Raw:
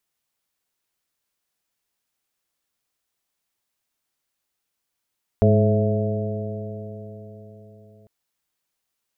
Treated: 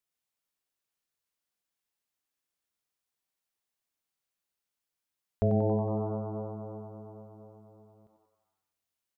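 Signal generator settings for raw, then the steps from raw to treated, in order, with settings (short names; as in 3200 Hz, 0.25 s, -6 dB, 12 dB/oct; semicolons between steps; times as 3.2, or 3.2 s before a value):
stretched partials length 2.65 s, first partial 104 Hz, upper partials -3/-16.5/-4/-9/-5.5 dB, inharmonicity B 0.0032, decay 4.29 s, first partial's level -15 dB
resonator 95 Hz, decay 1.6 s, harmonics all, mix 70%; on a send: frequency-shifting echo 92 ms, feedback 60%, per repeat +110 Hz, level -9 dB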